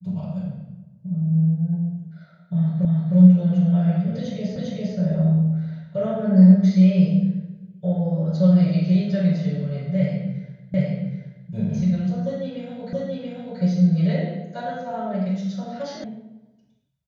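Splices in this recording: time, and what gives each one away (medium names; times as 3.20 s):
2.85 s: repeat of the last 0.31 s
4.56 s: repeat of the last 0.4 s
10.74 s: repeat of the last 0.77 s
12.93 s: repeat of the last 0.68 s
16.04 s: sound stops dead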